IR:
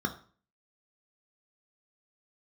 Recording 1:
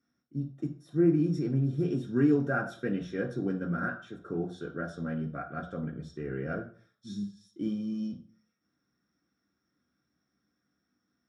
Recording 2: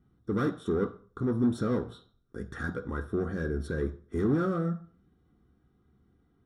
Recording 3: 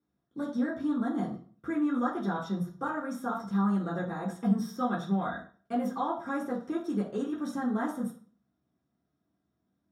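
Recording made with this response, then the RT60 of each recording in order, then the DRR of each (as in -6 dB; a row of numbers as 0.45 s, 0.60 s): 2; 0.45 s, 0.45 s, 0.45 s; -0.5 dB, 4.0 dB, -6.5 dB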